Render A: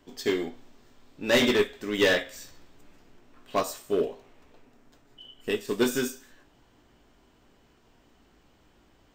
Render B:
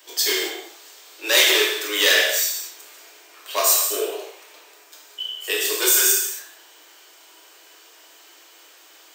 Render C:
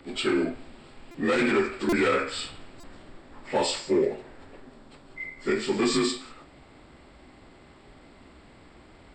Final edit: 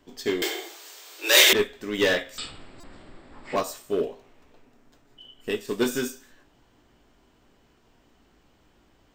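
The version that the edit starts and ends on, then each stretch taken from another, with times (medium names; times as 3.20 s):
A
0.42–1.53 s: from B
2.38–3.56 s: from C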